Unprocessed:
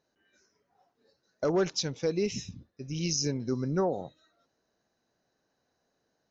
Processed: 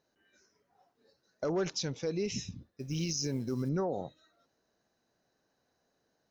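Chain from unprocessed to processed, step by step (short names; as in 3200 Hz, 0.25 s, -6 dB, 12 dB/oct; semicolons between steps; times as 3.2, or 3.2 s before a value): limiter -24.5 dBFS, peak gain reduction 7 dB; 2.67–3.69 short-mantissa float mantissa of 4-bit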